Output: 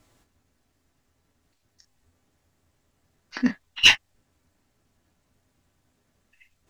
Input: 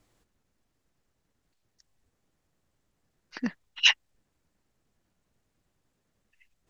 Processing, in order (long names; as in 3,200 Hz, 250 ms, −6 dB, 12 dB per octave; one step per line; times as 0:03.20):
notch filter 460 Hz, Q 12
in parallel at −4.5 dB: asymmetric clip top −29 dBFS
on the sum: convolution reverb, pre-delay 6 ms, DRR 5 dB
level +2 dB